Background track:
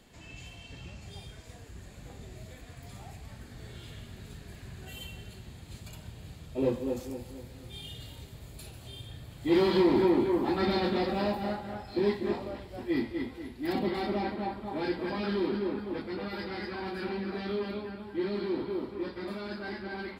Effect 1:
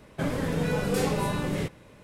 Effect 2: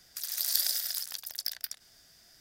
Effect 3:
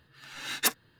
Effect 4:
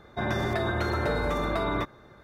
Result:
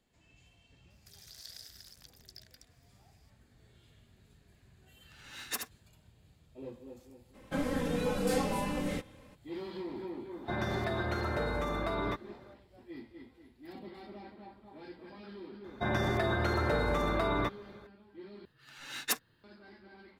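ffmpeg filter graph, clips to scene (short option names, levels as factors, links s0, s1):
-filter_complex "[3:a]asplit=2[s0][s1];[4:a]asplit=2[s2][s3];[0:a]volume=0.141[s4];[2:a]acrossover=split=7100[s5][s6];[s6]acompressor=threshold=0.00708:ratio=4:attack=1:release=60[s7];[s5][s7]amix=inputs=2:normalize=0[s8];[s0]aecho=1:1:74:0.501[s9];[1:a]aecho=1:1:3.8:0.79[s10];[s4]asplit=2[s11][s12];[s11]atrim=end=18.454[s13];[s1]atrim=end=0.99,asetpts=PTS-STARTPTS,volume=0.501[s14];[s12]atrim=start=19.436[s15];[s8]atrim=end=2.4,asetpts=PTS-STARTPTS,volume=0.158,afade=t=in:d=0.004:c=hsin,afade=t=out:st=2.396:d=0.004:c=hsin,adelay=900[s16];[s9]atrim=end=0.99,asetpts=PTS-STARTPTS,volume=0.282,afade=t=in:d=0.004:c=hsin,afade=t=out:st=0.986:d=0.004:c=hsin,adelay=4880[s17];[s10]atrim=end=2.03,asetpts=PTS-STARTPTS,volume=0.473,afade=t=in:d=0.02,afade=t=out:st=2.01:d=0.02,adelay=7330[s18];[s2]atrim=end=2.23,asetpts=PTS-STARTPTS,volume=0.501,afade=t=in:d=0.004:c=hsin,afade=t=out:st=2.226:d=0.004:c=hsin,adelay=10310[s19];[s3]atrim=end=2.23,asetpts=PTS-STARTPTS,volume=0.75,afade=t=in:d=0.004:c=hsin,afade=t=out:st=2.226:d=0.004:c=hsin,adelay=15640[s20];[s13][s14]acrossfade=d=0.004:c1=hsin:c2=hsin[s21];[s21][s15]acrossfade=d=0.004:c1=hsin:c2=hsin[s22];[s22][s16][s17][s18][s19][s20]amix=inputs=6:normalize=0"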